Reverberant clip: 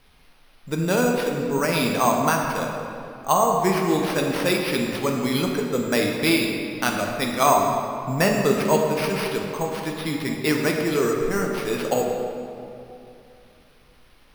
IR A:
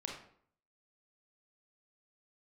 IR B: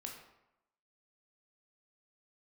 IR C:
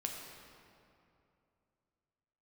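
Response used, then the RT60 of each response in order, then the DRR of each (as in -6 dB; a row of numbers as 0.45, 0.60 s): C; 0.60, 0.90, 2.7 s; -0.5, 0.5, 0.5 dB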